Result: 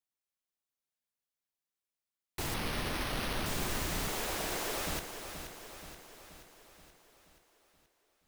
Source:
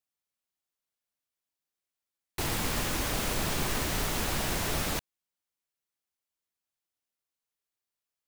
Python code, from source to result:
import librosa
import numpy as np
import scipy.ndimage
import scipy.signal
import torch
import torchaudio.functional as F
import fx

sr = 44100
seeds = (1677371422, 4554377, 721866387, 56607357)

y = fx.low_shelf_res(x, sr, hz=250.0, db=-14.0, q=1.5, at=(4.08, 4.87))
y = fx.echo_feedback(y, sr, ms=478, feedback_pct=57, wet_db=-9.0)
y = fx.resample_bad(y, sr, factor=6, down='none', up='hold', at=(2.54, 3.46))
y = y * 10.0 ** (-5.0 / 20.0)